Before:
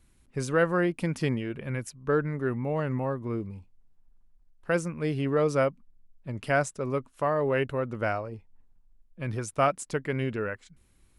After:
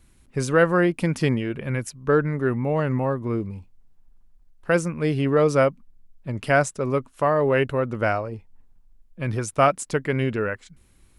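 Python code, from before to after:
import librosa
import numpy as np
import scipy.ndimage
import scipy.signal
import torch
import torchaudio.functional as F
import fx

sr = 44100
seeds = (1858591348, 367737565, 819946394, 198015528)

y = F.gain(torch.from_numpy(x), 6.0).numpy()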